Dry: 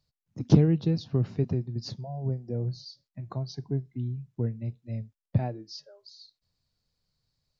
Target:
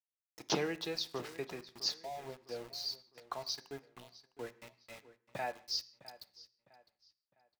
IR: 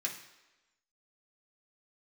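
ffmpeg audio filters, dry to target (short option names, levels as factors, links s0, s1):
-filter_complex "[0:a]agate=range=0.2:threshold=0.00398:ratio=16:detection=peak,highpass=960,aeval=exprs='val(0)+0.0002*(sin(2*PI*60*n/s)+sin(2*PI*2*60*n/s)/2+sin(2*PI*3*60*n/s)/3+sin(2*PI*4*60*n/s)/4+sin(2*PI*5*60*n/s)/5)':c=same,aeval=exprs='val(0)*gte(abs(val(0)),0.00188)':c=same,asplit=2[s0][s1];[s1]adelay=657,lowpass=f=4800:p=1,volume=0.141,asplit=2[s2][s3];[s3]adelay=657,lowpass=f=4800:p=1,volume=0.36,asplit=2[s4][s5];[s5]adelay=657,lowpass=f=4800:p=1,volume=0.36[s6];[s0][s2][s4][s6]amix=inputs=4:normalize=0,asplit=2[s7][s8];[1:a]atrim=start_sample=2205,afade=t=out:st=0.24:d=0.01,atrim=end_sample=11025,highshelf=f=4200:g=-6[s9];[s8][s9]afir=irnorm=-1:irlink=0,volume=0.398[s10];[s7][s10]amix=inputs=2:normalize=0,volume=1.78"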